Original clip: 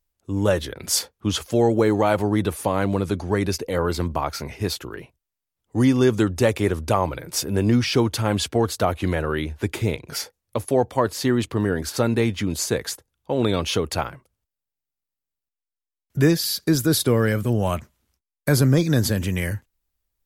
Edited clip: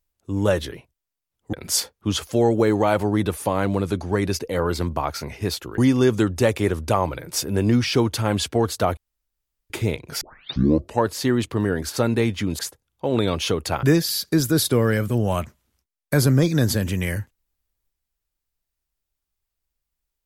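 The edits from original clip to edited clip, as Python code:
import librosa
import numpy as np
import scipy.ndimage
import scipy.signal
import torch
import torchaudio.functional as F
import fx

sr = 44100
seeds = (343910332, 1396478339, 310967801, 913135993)

y = fx.edit(x, sr, fx.move(start_s=4.97, length_s=0.81, to_s=0.72),
    fx.room_tone_fill(start_s=8.97, length_s=0.73),
    fx.tape_start(start_s=10.21, length_s=0.85),
    fx.cut(start_s=12.59, length_s=0.26),
    fx.cut(start_s=14.09, length_s=2.09), tone=tone)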